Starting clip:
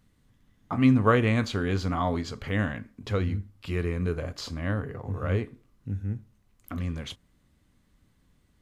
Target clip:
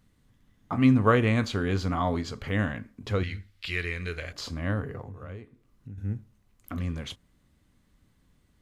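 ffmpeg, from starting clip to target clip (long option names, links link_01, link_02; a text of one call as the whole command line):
ffmpeg -i in.wav -filter_complex "[0:a]asettb=1/sr,asplit=3[link_01][link_02][link_03];[link_01]atrim=end=3.234[link_04];[link_02]atrim=start=3.23:end=4.33,asetpts=PTS-STARTPTS,afade=type=in:duration=0.004:curve=qsin,afade=type=out:start_time=1.096:duration=0.004:curve=qsin,equalizer=frequency=125:width_type=o:width=1:gain=-10,equalizer=frequency=250:width_type=o:width=1:gain=-9,equalizer=frequency=500:width_type=o:width=1:gain=-3,equalizer=frequency=1000:width_type=o:width=1:gain=-8,equalizer=frequency=2000:width_type=o:width=1:gain=10,equalizer=frequency=4000:width_type=o:width=1:gain=9[link_05];[link_03]atrim=start=4.326[link_06];[link_04][link_05]acrossfade=duration=0.004:curve1=hsin:curve2=qsin[link_07];[link_07][link_06]acrossfade=duration=0.004:curve1=qsin:curve2=hsin,asettb=1/sr,asplit=3[link_08][link_09][link_10];[link_08]atrim=end=5.034[link_11];[link_09]atrim=start=5.03:end=5.98,asetpts=PTS-STARTPTS,afade=type=in:duration=0.004:curve=qsin,afade=type=out:start_time=0.946:duration=0.004:curve=qsin,acompressor=threshold=-43dB:ratio=3[link_12];[link_10]atrim=start=5.976[link_13];[link_11][link_12]acrossfade=duration=0.004:curve1=hsin:curve2=qsin[link_14];[link_14][link_13]acrossfade=duration=0.004:curve1=qsin:curve2=hsin" out.wav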